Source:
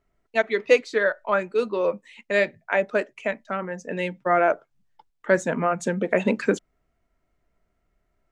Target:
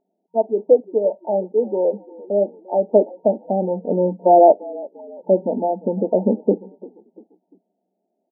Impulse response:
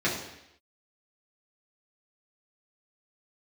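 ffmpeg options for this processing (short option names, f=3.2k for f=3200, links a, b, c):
-filter_complex "[0:a]asplit=3[a][b][c];[a]afade=t=out:st=2.9:d=0.02[d];[b]acontrast=67,afade=t=in:st=2.9:d=0.02,afade=t=out:st=4.51:d=0.02[e];[c]afade=t=in:st=4.51:d=0.02[f];[d][e][f]amix=inputs=3:normalize=0,asplit=4[g][h][i][j];[h]adelay=345,afreqshift=-38,volume=-20.5dB[k];[i]adelay=690,afreqshift=-76,volume=-27.6dB[l];[j]adelay=1035,afreqshift=-114,volume=-34.8dB[m];[g][k][l][m]amix=inputs=4:normalize=0,afftfilt=real='re*between(b*sr/4096,180,930)':imag='im*between(b*sr/4096,180,930)':win_size=4096:overlap=0.75,volume=4.5dB"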